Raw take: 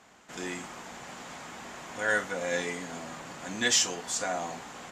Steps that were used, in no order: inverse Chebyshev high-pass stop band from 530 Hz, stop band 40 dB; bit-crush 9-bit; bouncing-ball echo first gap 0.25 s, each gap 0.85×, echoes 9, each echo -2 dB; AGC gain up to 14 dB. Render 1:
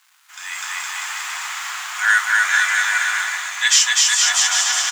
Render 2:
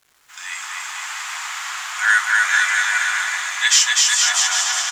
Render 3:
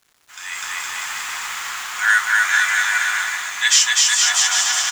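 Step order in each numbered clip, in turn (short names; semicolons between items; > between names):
bouncing-ball echo > bit-crush > inverse Chebyshev high-pass > AGC; inverse Chebyshev high-pass > AGC > bouncing-ball echo > bit-crush; inverse Chebyshev high-pass > bit-crush > bouncing-ball echo > AGC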